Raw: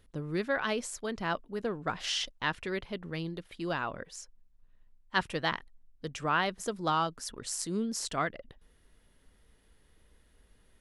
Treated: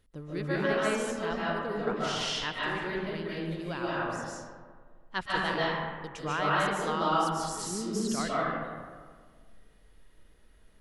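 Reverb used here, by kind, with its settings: digital reverb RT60 1.7 s, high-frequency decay 0.45×, pre-delay 0.105 s, DRR -7 dB; gain -5 dB

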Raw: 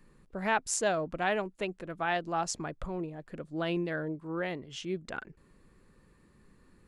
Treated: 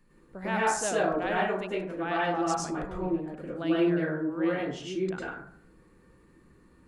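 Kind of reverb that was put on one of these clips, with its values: plate-style reverb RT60 0.58 s, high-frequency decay 0.4×, pre-delay 90 ms, DRR -6.5 dB; gain -4.5 dB

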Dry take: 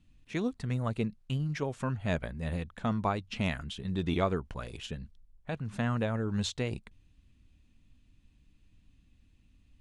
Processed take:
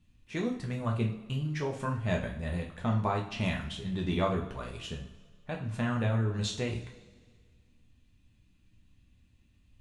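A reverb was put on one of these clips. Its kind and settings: two-slope reverb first 0.42 s, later 1.8 s, from -17 dB, DRR -0.5 dB; gain -2.5 dB

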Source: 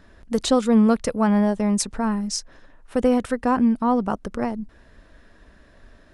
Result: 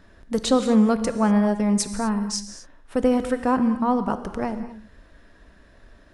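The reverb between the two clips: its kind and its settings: non-linear reverb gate 0.27 s flat, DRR 9.5 dB; gain -1 dB

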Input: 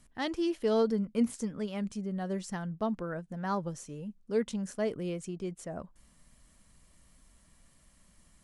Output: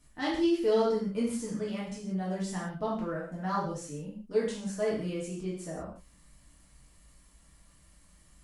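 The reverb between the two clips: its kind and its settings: non-linear reverb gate 0.21 s falling, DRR -7 dB; gain -5.5 dB

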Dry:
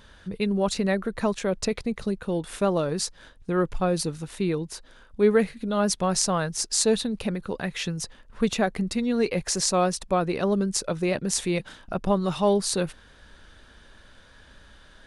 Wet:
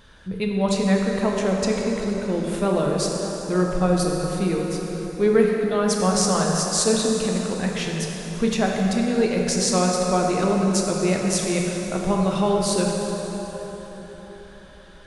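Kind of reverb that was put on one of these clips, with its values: plate-style reverb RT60 4.5 s, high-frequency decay 0.65×, DRR -1 dB

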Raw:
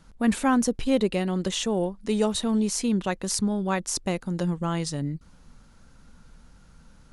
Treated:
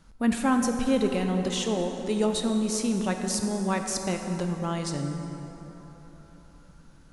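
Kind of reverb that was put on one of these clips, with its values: plate-style reverb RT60 4.1 s, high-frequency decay 0.5×, DRR 4 dB; gain -2.5 dB

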